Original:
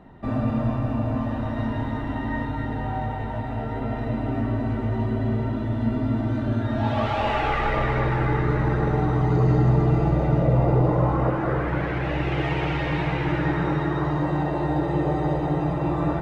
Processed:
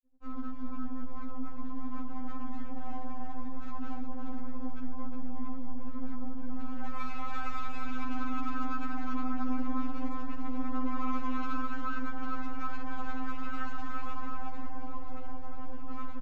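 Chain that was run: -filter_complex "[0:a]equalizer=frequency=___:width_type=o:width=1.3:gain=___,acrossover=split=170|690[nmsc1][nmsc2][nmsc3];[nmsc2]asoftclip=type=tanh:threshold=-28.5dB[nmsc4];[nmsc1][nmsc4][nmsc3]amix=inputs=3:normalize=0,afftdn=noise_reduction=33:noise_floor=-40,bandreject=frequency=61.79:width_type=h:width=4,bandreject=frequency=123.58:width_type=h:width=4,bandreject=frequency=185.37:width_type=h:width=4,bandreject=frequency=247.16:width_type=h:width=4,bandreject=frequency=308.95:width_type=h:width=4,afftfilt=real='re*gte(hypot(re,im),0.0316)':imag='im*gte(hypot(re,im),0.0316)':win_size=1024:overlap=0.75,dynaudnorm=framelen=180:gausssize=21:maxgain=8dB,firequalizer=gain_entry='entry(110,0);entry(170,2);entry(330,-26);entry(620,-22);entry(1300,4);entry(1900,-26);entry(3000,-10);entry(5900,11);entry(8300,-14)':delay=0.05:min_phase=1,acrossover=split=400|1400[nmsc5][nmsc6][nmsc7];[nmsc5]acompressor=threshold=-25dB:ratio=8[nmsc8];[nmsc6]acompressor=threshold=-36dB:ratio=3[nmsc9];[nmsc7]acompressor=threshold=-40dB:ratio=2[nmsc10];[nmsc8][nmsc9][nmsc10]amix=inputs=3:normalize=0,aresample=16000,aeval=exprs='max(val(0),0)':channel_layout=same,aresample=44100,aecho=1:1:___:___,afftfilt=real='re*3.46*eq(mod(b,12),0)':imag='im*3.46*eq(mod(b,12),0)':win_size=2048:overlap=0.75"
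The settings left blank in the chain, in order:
3500, -12.5, 359, 0.422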